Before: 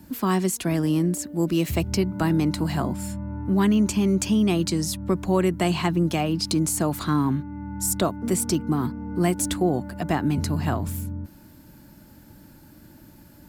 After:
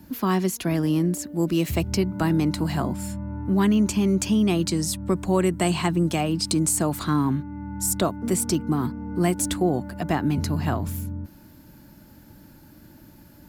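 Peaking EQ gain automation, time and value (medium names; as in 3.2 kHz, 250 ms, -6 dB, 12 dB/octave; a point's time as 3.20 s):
peaking EQ 8.3 kHz 0.22 oct
0.78 s -11.5 dB
1.44 s -0.5 dB
4.58 s -0.5 dB
5.08 s +9.5 dB
6.60 s +9.5 dB
7.09 s +1 dB
9.61 s +1 dB
10.29 s -6 dB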